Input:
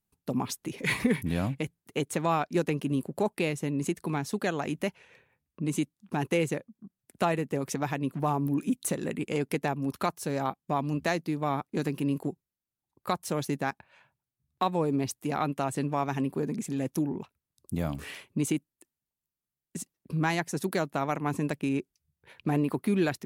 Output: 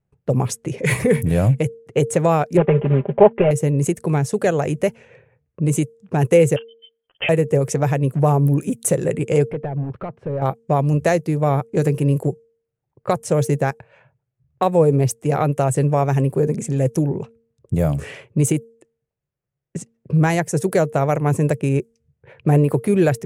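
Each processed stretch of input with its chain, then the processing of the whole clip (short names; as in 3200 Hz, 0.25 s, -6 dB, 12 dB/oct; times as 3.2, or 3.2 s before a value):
2.57–3.51 CVSD 16 kbps + bell 880 Hz +7 dB 1.1 oct + comb 5 ms, depth 67%
6.56–7.29 inverted band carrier 3300 Hz + ensemble effect
9.5–10.42 compressor 2.5:1, threshold -30 dBFS + hard clip -31.5 dBFS + air absorption 470 m
whole clip: de-hum 229 Hz, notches 2; low-pass opened by the level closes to 2400 Hz, open at -26 dBFS; graphic EQ 125/250/500/1000/4000/8000 Hz +12/-9/+10/-5/-10/+6 dB; gain +8.5 dB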